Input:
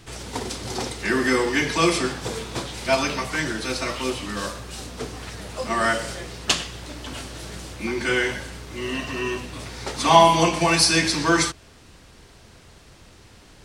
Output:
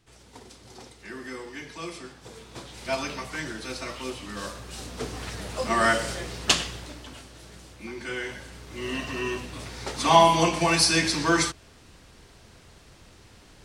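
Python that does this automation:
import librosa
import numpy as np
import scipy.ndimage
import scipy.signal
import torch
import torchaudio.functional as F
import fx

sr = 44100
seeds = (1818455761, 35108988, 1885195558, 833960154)

y = fx.gain(x, sr, db=fx.line((2.15, -17.5), (2.86, -8.0), (4.19, -8.0), (5.2, 0.0), (6.69, 0.0), (7.21, -11.0), (8.17, -11.0), (8.91, -3.0)))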